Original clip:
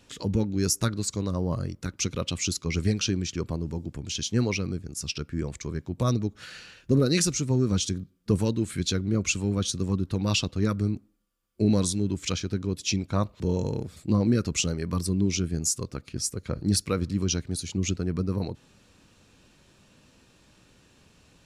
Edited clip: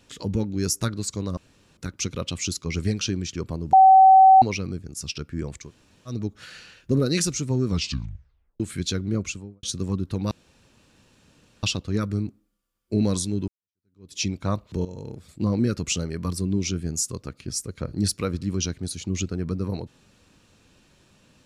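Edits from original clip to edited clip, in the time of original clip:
0:01.37–0:01.77: fill with room tone
0:03.73–0:04.42: beep over 764 Hz −8.5 dBFS
0:05.65–0:06.13: fill with room tone, crossfade 0.16 s
0:07.68: tape stop 0.92 s
0:09.12–0:09.63: fade out and dull
0:10.31: splice in room tone 1.32 s
0:12.16–0:12.84: fade in exponential
0:13.53–0:14.22: fade in, from −13 dB

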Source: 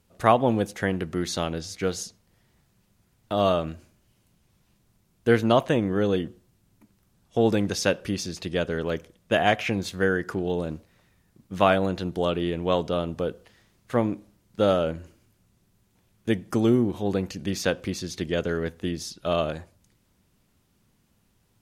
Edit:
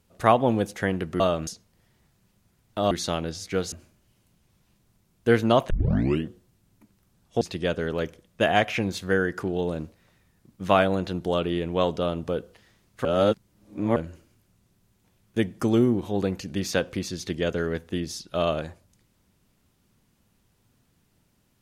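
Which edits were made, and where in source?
0:01.20–0:02.01: swap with 0:03.45–0:03.72
0:05.70: tape start 0.55 s
0:07.41–0:08.32: remove
0:13.96–0:14.87: reverse

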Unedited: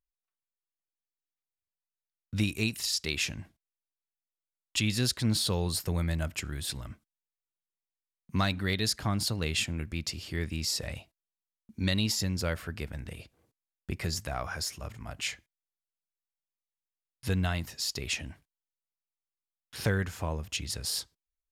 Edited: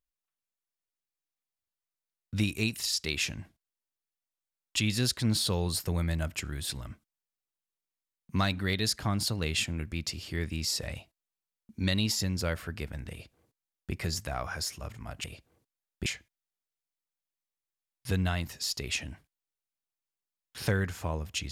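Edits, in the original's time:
0:13.11–0:13.93: duplicate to 0:15.24

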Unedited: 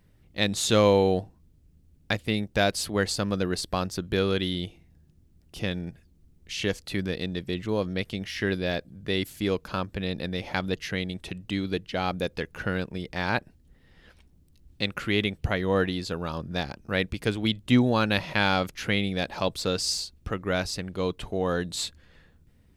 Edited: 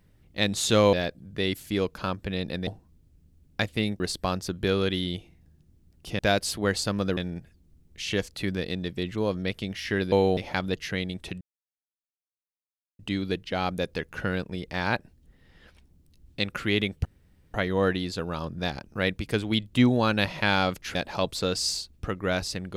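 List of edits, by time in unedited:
0:00.93–0:01.18: swap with 0:08.63–0:10.37
0:02.51–0:03.49: move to 0:05.68
0:11.41: splice in silence 1.58 s
0:15.47: splice in room tone 0.49 s
0:18.88–0:19.18: remove

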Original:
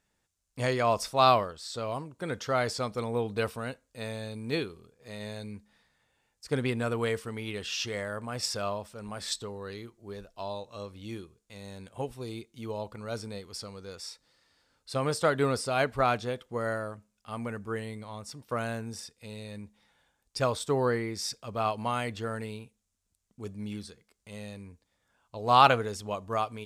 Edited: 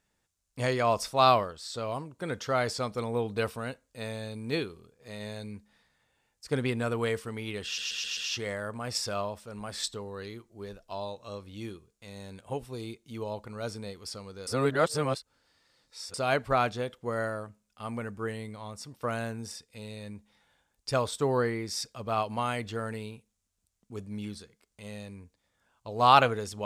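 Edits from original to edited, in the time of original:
0:07.65: stutter 0.13 s, 5 plays
0:13.95–0:15.62: reverse

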